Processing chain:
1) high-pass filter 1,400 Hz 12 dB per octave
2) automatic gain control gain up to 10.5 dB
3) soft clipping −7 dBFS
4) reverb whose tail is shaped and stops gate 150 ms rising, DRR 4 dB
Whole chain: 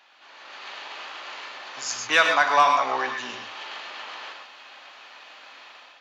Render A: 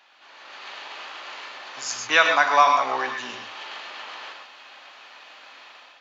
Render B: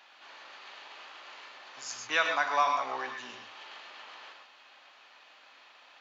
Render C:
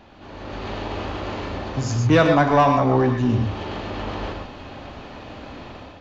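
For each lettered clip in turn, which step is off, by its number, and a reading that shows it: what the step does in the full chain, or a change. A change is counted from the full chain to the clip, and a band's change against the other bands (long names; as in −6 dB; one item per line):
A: 3, distortion level −18 dB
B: 2, change in crest factor +2.0 dB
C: 1, 250 Hz band +25.5 dB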